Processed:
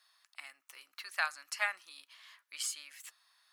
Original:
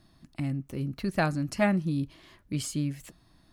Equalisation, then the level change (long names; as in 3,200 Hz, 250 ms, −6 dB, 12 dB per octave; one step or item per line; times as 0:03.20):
high-pass filter 1,100 Hz 24 dB per octave
0.0 dB